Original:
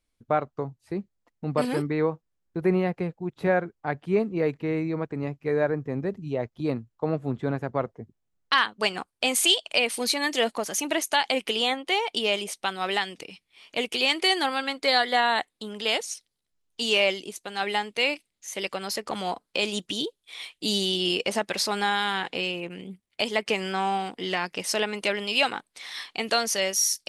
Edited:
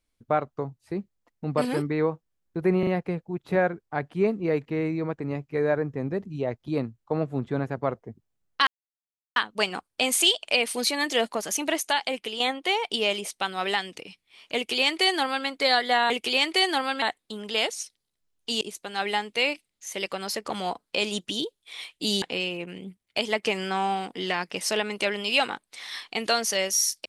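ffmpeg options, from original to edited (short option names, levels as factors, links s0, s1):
-filter_complex "[0:a]asplit=9[s0][s1][s2][s3][s4][s5][s6][s7][s8];[s0]atrim=end=2.832[s9];[s1]atrim=start=2.788:end=2.832[s10];[s2]atrim=start=2.788:end=8.59,asetpts=PTS-STARTPTS,afade=t=out:st=5.798:d=0.004:c=hsin,apad=pad_dur=0.69[s11];[s3]atrim=start=8.59:end=11.63,asetpts=PTS-STARTPTS,afade=t=in:d=0.004:c=hsin,afade=t=out:st=2.38:d=0.66:silence=0.398107[s12];[s4]atrim=start=11.63:end=15.332,asetpts=PTS-STARTPTS,afade=t=in:d=0.004:c=hsin:silence=0.398107[s13];[s5]atrim=start=13.778:end=14.702[s14];[s6]atrim=start=15.328:end=16.922[s15];[s7]atrim=start=17.218:end=20.832[s16];[s8]atrim=start=22.248[s17];[s9][s10]acrossfade=d=0.004:c1=hsin:c2=hsin[s18];[s11][s12][s13]concat=n=3:v=0:a=1[s19];[s18][s19]acrossfade=d=0.004:c1=hsin:c2=hsin[s20];[s20][s14]acrossfade=d=0.004:c1=hsin:c2=hsin[s21];[s21][s15]acrossfade=d=0.004:c1=hsin:c2=hsin[s22];[s22][s16]acrossfade=d=0.004:c1=hsin:c2=hsin[s23];[s23][s17]acrossfade=d=0.004:c1=hsin:c2=hsin"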